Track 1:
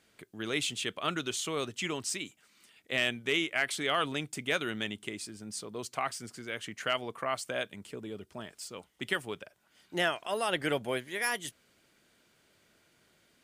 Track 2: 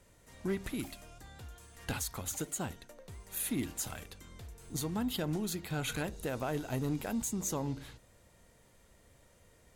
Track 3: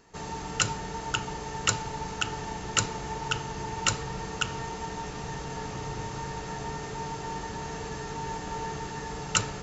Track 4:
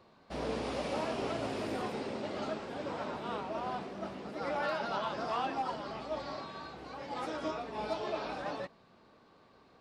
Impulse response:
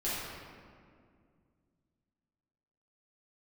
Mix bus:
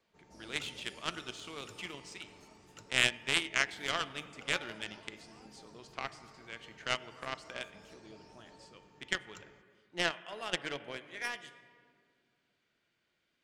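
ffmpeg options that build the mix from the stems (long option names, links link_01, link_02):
-filter_complex "[0:a]lowpass=7500,equalizer=frequency=2700:width_type=o:width=2.5:gain=6.5,volume=-1dB,asplit=2[link_01][link_02];[link_02]volume=-12.5dB[link_03];[1:a]adelay=400,volume=-15dB[link_04];[2:a]equalizer=frequency=330:width=0.61:gain=7,volume=-13.5dB[link_05];[3:a]aphaser=in_gain=1:out_gain=1:delay=1:decay=0.52:speed=0.22:type=triangular,aexciter=amount=7.6:drive=8:freq=4900,volume=-9dB[link_06];[4:a]atrim=start_sample=2205[link_07];[link_03][link_07]afir=irnorm=-1:irlink=0[link_08];[link_01][link_04][link_05][link_06][link_08]amix=inputs=5:normalize=0,highshelf=frequency=8000:gain=-7.5,aeval=exprs='0.335*(cos(1*acos(clip(val(0)/0.335,-1,1)))-cos(1*PI/2))+0.0944*(cos(3*acos(clip(val(0)/0.335,-1,1)))-cos(3*PI/2))':channel_layout=same"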